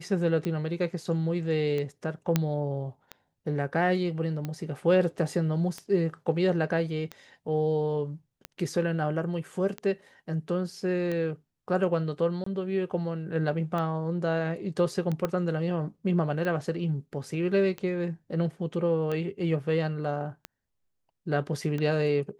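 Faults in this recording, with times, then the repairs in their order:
tick 45 rpm -20 dBFS
2.36 pop -9 dBFS
12.44–12.46 gap 24 ms
15.25 pop -15 dBFS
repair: de-click; interpolate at 12.44, 24 ms

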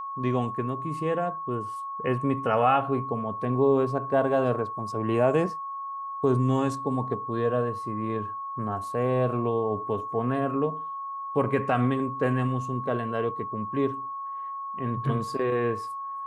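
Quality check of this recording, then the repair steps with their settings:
tone 1100 Hz -32 dBFS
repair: notch 1100 Hz, Q 30

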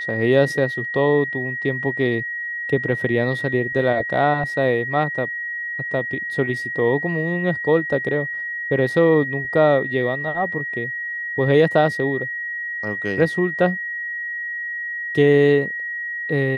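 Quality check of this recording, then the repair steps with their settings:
tone 1900 Hz -25 dBFS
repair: notch 1900 Hz, Q 30

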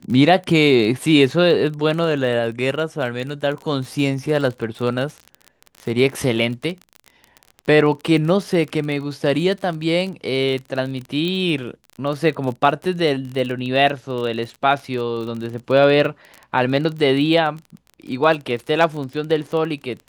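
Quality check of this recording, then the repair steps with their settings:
crackle 30/s -26 dBFS
11.28 pop -14 dBFS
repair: de-click

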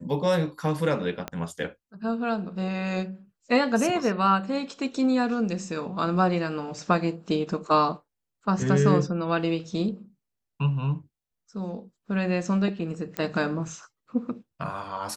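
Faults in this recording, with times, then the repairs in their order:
1.28 pop -16 dBFS
13.17 pop -15 dBFS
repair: de-click

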